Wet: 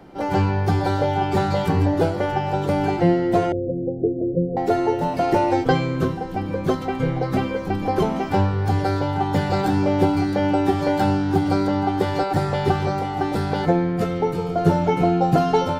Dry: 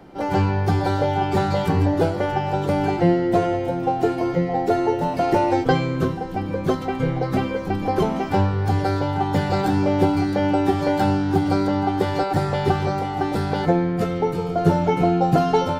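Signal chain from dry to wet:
0:03.52–0:04.57: Butterworth low-pass 590 Hz 72 dB per octave

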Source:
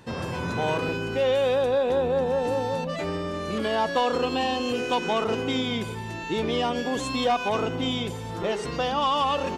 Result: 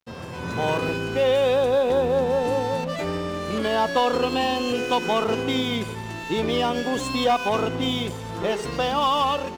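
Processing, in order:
dead-zone distortion −43.5 dBFS
automatic gain control gain up to 7.5 dB
level −4 dB

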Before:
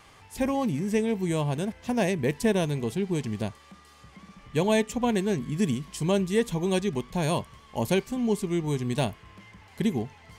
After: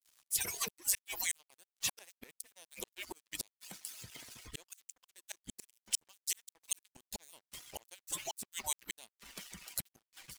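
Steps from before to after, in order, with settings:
harmonic-percussive split with one part muted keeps percussive
gate with flip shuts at −27 dBFS, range −34 dB
dynamic equaliser 260 Hz, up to −5 dB, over −60 dBFS, Q 1.4
automatic gain control gain up to 13.5 dB
brickwall limiter −23 dBFS, peak gain reduction 11.5 dB
dead-zone distortion −53 dBFS
first-order pre-emphasis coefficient 0.9
level +7.5 dB

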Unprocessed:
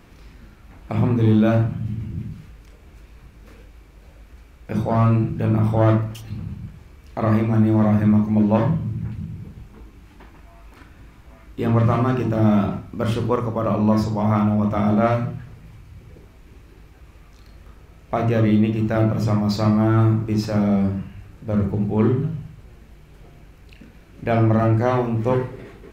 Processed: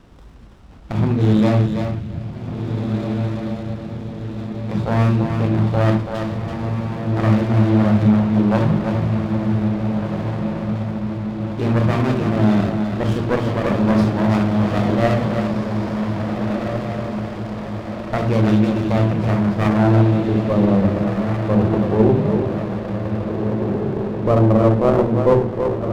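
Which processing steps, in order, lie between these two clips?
on a send: feedback echo with a high-pass in the loop 331 ms, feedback 16%, high-pass 160 Hz, level −6 dB
on the sum: low-pass filter sweep 4,000 Hz → 530 Hz, 0:19.00–0:20.11
feedback delay with all-pass diffusion 1,692 ms, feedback 58%, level −5.5 dB
windowed peak hold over 17 samples
level +1 dB

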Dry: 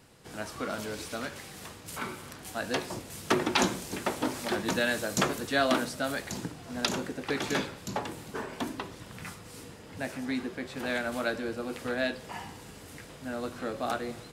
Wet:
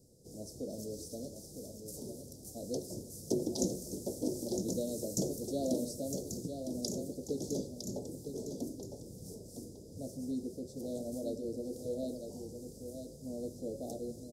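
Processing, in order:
elliptic band-stop filter 540–5,400 Hz, stop band 50 dB
single-tap delay 958 ms −7.5 dB
level −3.5 dB

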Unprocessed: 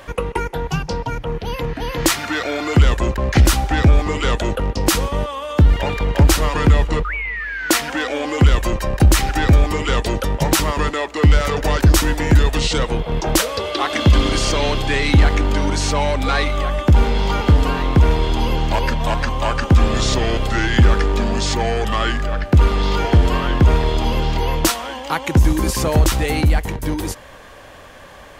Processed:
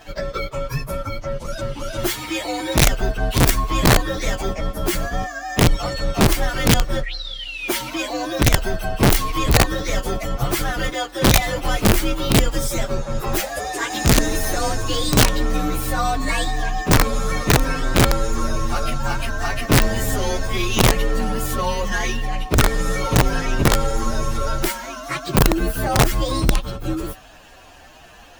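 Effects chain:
partials spread apart or drawn together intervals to 127%
wrap-around overflow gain 8 dB

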